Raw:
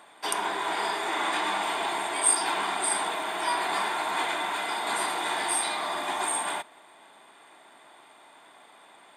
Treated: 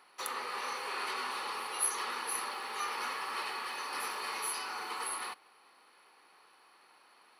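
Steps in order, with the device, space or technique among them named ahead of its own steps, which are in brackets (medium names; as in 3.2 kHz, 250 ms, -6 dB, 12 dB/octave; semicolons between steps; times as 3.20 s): nightcore (tape speed +24%); trim -9 dB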